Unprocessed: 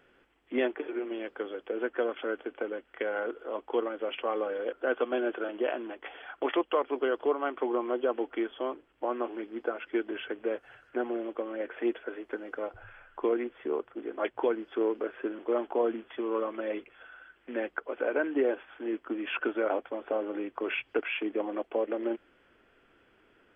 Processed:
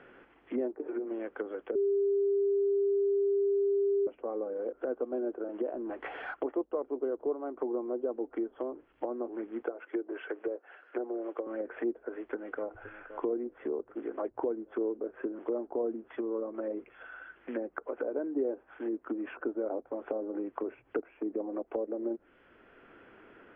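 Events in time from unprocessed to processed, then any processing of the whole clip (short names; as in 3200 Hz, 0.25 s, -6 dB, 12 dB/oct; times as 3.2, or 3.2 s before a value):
1.75–4.07 bleep 399 Hz -20.5 dBFS
5.73–6.34 G.711 law mismatch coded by mu
9.62–11.47 HPF 320 Hz 24 dB/oct
12.11–12.76 echo throw 0.52 s, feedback 65%, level -16.5 dB
whole clip: treble ducked by the level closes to 540 Hz, closed at -29 dBFS; LPF 2800 Hz 12 dB/oct; three-band squash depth 40%; gain -2 dB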